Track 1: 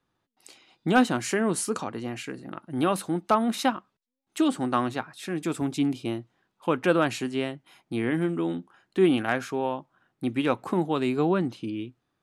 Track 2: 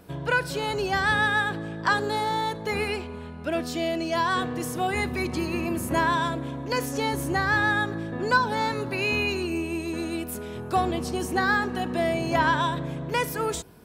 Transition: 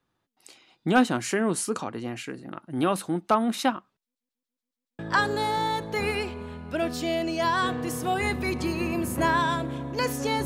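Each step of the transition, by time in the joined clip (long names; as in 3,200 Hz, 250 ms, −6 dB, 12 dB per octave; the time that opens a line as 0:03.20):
track 1
0:04.01: stutter in place 0.14 s, 7 plays
0:04.99: continue with track 2 from 0:01.72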